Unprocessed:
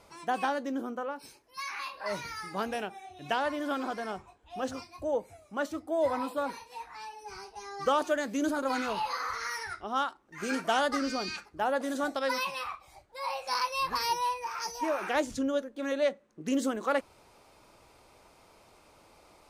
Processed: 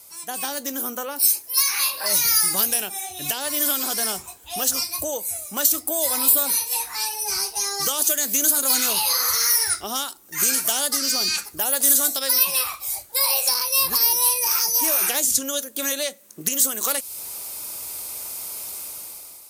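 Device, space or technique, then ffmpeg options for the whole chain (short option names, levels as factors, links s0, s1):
FM broadcast chain: -filter_complex "[0:a]highpass=46,dynaudnorm=f=200:g=7:m=5.01,acrossover=split=630|2600[s0][s1][s2];[s0]acompressor=threshold=0.0355:ratio=4[s3];[s1]acompressor=threshold=0.0282:ratio=4[s4];[s2]acompressor=threshold=0.0251:ratio=4[s5];[s3][s4][s5]amix=inputs=3:normalize=0,aemphasis=mode=production:type=75fm,alimiter=limit=0.224:level=0:latency=1:release=250,asoftclip=type=hard:threshold=0.141,lowpass=f=15000:w=0.5412,lowpass=f=15000:w=1.3066,aemphasis=mode=production:type=75fm,volume=0.708"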